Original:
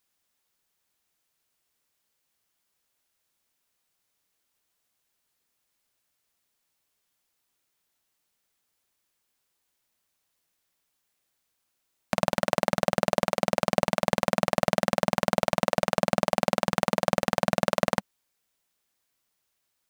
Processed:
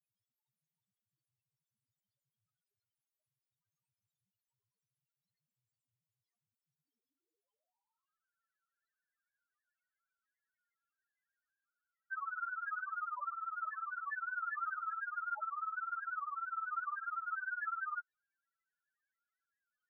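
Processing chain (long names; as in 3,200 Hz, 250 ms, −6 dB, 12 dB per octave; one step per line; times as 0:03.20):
0:14.36–0:14.97: converter with a step at zero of −31.5 dBFS
high-pass filter sweep 110 Hz → 1,400 Hz, 0:06.56–0:08.18
spectral peaks only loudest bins 1
level +6.5 dB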